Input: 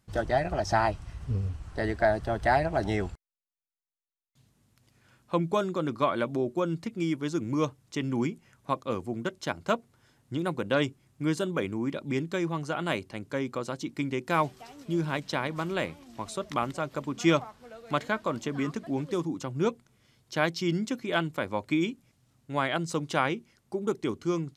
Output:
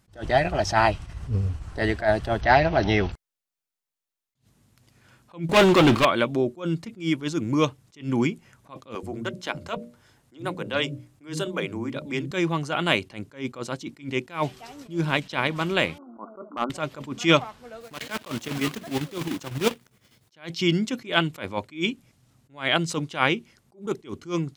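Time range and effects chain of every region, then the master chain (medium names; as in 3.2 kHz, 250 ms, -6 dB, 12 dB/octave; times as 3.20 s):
2.41–3.12 s: companding laws mixed up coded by mu + brick-wall FIR low-pass 6.3 kHz
5.49–6.05 s: feedback comb 120 Hz, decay 0.19 s, harmonics odd, mix 50% + waveshaping leveller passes 5
8.95–12.31 s: hum notches 60/120/180/240/300/360/420/480/540/600 Hz + compression 1.5:1, threshold -34 dBFS + bands offset in time highs, lows 80 ms, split 220 Hz
15.98–16.70 s: brick-wall FIR band-pass 190–1500 Hz + overload inside the chain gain 20 dB
17.81–20.34 s: block-companded coder 3-bit + high-pass 63 Hz + square tremolo 10 Hz, depth 60%, duty 70%
whole clip: dynamic bell 2.9 kHz, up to +8 dB, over -48 dBFS, Q 1.3; attacks held to a fixed rise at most 200 dB/s; trim +5.5 dB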